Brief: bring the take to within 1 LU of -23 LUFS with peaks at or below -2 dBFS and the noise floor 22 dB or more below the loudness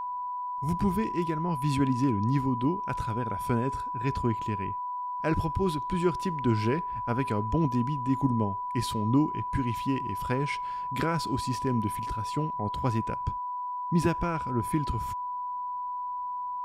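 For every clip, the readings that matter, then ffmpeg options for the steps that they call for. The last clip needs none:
steady tone 990 Hz; tone level -31 dBFS; loudness -29.5 LUFS; peak -12.5 dBFS; loudness target -23.0 LUFS
-> -af "bandreject=f=990:w=30"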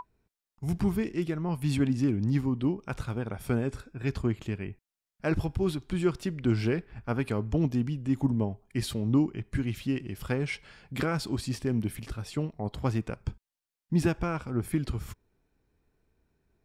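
steady tone none; loudness -30.5 LUFS; peak -13.0 dBFS; loudness target -23.0 LUFS
-> -af "volume=7.5dB"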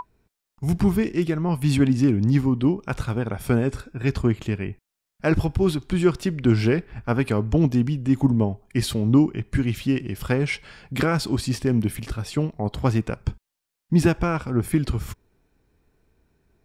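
loudness -23.0 LUFS; peak -5.5 dBFS; noise floor -83 dBFS

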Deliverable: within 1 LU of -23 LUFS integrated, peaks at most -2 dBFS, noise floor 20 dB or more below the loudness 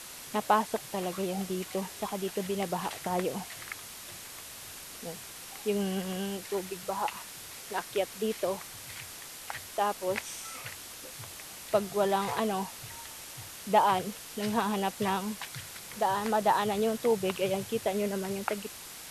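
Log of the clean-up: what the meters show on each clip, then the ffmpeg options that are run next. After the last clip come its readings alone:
noise floor -45 dBFS; noise floor target -53 dBFS; loudness -32.5 LUFS; peak -11.0 dBFS; loudness target -23.0 LUFS
-> -af "afftdn=nr=8:nf=-45"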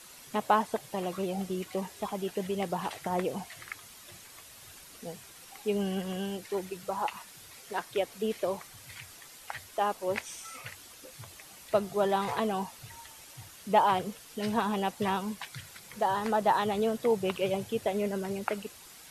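noise floor -51 dBFS; noise floor target -52 dBFS
-> -af "afftdn=nr=6:nf=-51"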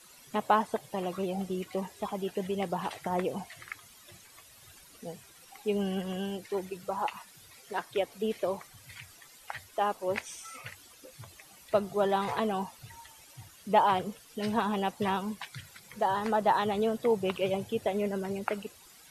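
noise floor -56 dBFS; loudness -31.5 LUFS; peak -11.0 dBFS; loudness target -23.0 LUFS
-> -af "volume=8.5dB"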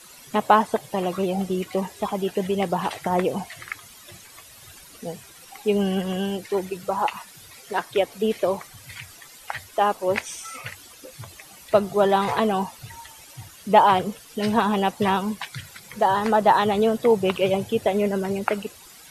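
loudness -23.0 LUFS; peak -2.5 dBFS; noise floor -47 dBFS

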